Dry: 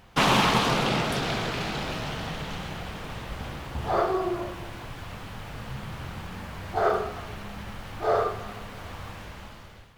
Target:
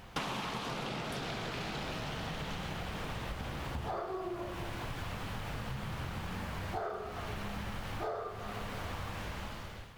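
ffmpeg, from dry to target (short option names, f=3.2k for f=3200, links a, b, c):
-af "acompressor=threshold=-37dB:ratio=12,volume=2dB"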